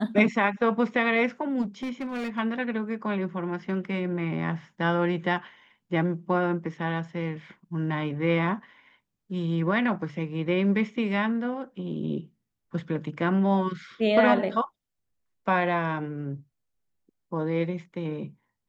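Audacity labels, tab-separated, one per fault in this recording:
1.610000	2.390000	clipped -27.5 dBFS

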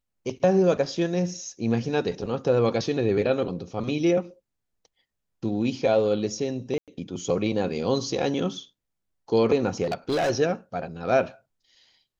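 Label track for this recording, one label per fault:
6.780000	6.880000	dropout 97 ms
9.830000	10.310000	clipped -20.5 dBFS

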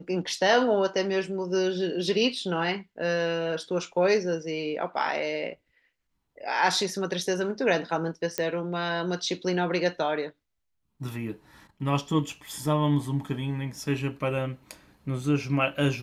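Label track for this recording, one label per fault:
8.380000	8.380000	pop -11 dBFS

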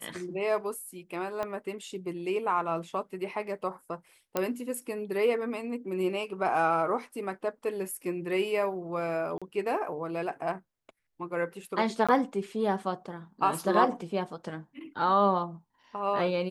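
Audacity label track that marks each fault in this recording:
1.430000	1.430000	pop -20 dBFS
4.370000	4.370000	pop -13 dBFS
9.380000	9.420000	dropout 36 ms
12.070000	12.090000	dropout 16 ms

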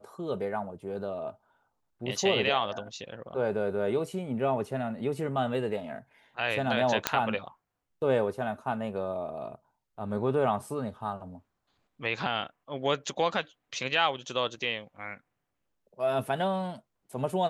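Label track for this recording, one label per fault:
7.070000	7.070000	pop -6 dBFS

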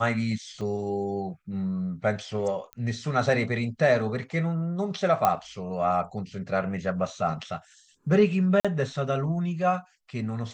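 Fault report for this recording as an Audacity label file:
0.610000	0.610000	dropout 3.5 ms
2.730000	2.730000	pop -22 dBFS
5.250000	5.250000	pop -9 dBFS
8.600000	8.650000	dropout 46 ms

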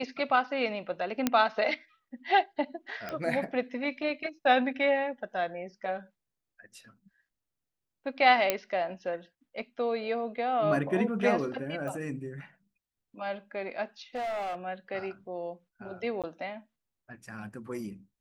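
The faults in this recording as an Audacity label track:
1.270000	1.270000	pop -10 dBFS
3.090000	3.090000	pop -22 dBFS
8.500000	8.500000	pop -9 dBFS
11.880000	11.880000	pop
14.150000	14.560000	clipped -30.5 dBFS
16.220000	16.240000	dropout 17 ms

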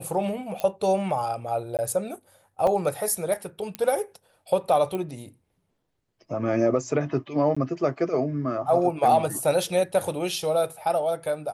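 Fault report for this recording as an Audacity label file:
0.600000	0.600000	pop -14 dBFS
1.770000	1.790000	dropout 18 ms
2.670000	2.670000	dropout 2.8 ms
3.750000	3.750000	pop -14 dBFS
4.950000	4.950000	pop -19 dBFS
7.550000	7.570000	dropout 15 ms

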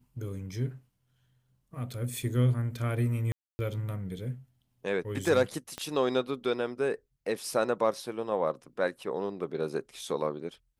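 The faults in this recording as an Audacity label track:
3.320000	3.590000	dropout 270 ms
5.780000	5.780000	pop -21 dBFS

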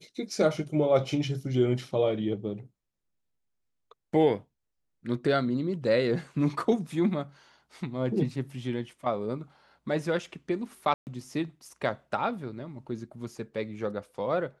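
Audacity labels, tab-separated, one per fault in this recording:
10.940000	11.070000	dropout 129 ms

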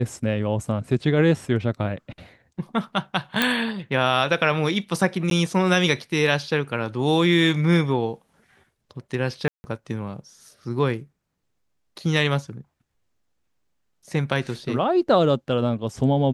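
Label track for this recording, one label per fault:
3.420000	3.420000	pop -5 dBFS
5.300000	5.310000	dropout 12 ms
9.480000	9.640000	dropout 160 ms

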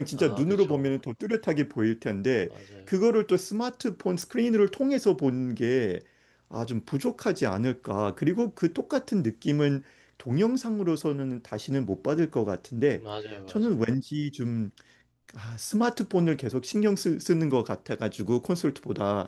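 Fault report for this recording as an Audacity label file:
4.220000	4.220000	pop -20 dBFS

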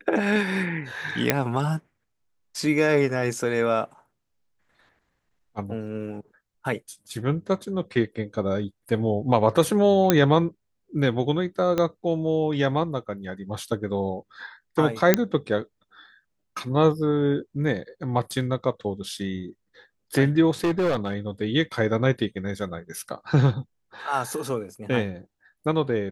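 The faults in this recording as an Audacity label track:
1.300000	1.300000	pop -3 dBFS
10.100000	10.100000	pop -2 dBFS
11.780000	11.780000	pop -11 dBFS
15.140000	15.140000	pop -2 dBFS
20.640000	21.130000	clipped -19 dBFS

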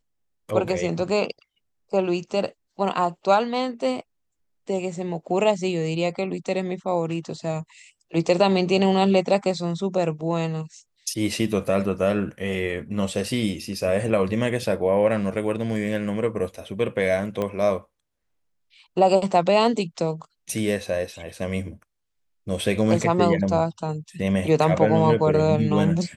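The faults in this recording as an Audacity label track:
17.420000	17.420000	pop -14 dBFS

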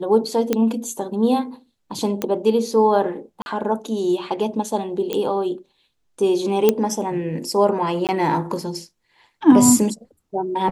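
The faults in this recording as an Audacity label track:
0.530000	0.530000	pop -6 dBFS
2.220000	2.220000	pop -8 dBFS
3.420000	3.460000	dropout 41 ms
5.130000	5.130000	pop -10 dBFS
6.690000	6.690000	pop -2 dBFS
8.070000	8.090000	dropout 18 ms

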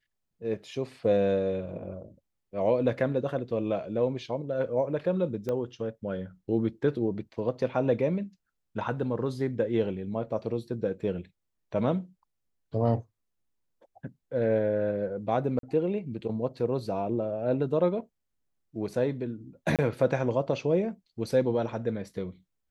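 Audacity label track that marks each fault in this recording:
5.490000	5.490000	pop -20 dBFS
15.590000	15.630000	dropout 42 ms
19.760000	19.790000	dropout 27 ms

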